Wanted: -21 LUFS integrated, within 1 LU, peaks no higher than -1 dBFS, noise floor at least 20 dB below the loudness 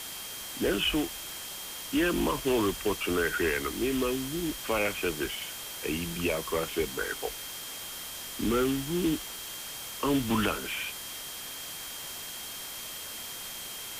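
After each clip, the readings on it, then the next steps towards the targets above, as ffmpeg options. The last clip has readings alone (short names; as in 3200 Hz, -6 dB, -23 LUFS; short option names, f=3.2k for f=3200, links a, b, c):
steady tone 3200 Hz; tone level -45 dBFS; noise floor -40 dBFS; noise floor target -51 dBFS; loudness -31.0 LUFS; peak -16.0 dBFS; loudness target -21.0 LUFS
-> -af "bandreject=f=3.2k:w=30"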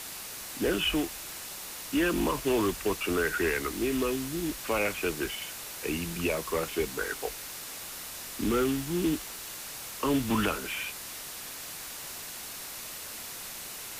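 steady tone none; noise floor -41 dBFS; noise floor target -52 dBFS
-> -af "afftdn=nr=11:nf=-41"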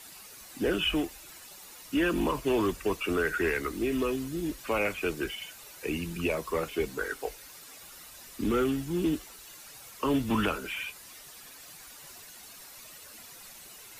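noise floor -49 dBFS; noise floor target -51 dBFS
-> -af "afftdn=nr=6:nf=-49"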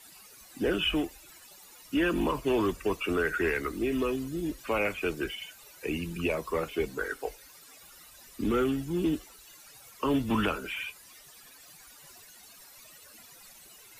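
noise floor -53 dBFS; loudness -30.5 LUFS; peak -17.0 dBFS; loudness target -21.0 LUFS
-> -af "volume=9.5dB"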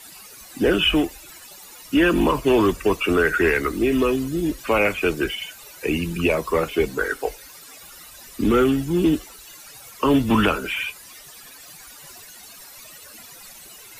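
loudness -21.0 LUFS; peak -7.5 dBFS; noise floor -44 dBFS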